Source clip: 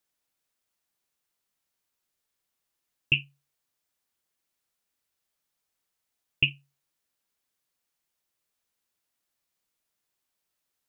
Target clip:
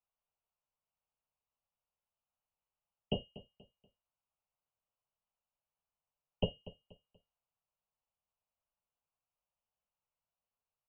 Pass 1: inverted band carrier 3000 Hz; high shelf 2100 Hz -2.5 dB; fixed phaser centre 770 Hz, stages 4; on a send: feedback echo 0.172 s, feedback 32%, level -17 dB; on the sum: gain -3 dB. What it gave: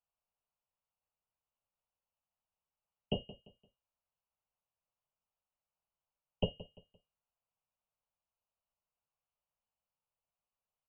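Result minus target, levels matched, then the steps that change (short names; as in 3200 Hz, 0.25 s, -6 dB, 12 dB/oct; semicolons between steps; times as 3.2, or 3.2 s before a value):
echo 68 ms early
change: feedback echo 0.24 s, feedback 32%, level -17 dB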